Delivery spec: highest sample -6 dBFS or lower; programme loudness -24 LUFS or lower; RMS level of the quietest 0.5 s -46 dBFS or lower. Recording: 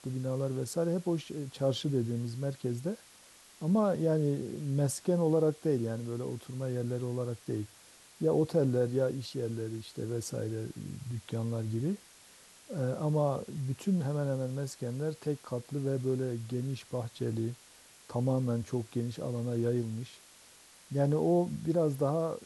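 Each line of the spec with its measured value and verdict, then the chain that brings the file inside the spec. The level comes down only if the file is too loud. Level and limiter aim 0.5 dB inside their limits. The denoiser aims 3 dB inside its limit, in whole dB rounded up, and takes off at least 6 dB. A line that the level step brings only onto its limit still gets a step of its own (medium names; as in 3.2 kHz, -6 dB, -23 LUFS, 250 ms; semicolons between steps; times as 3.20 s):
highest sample -16.0 dBFS: pass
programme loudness -33.0 LUFS: pass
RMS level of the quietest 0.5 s -57 dBFS: pass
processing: none needed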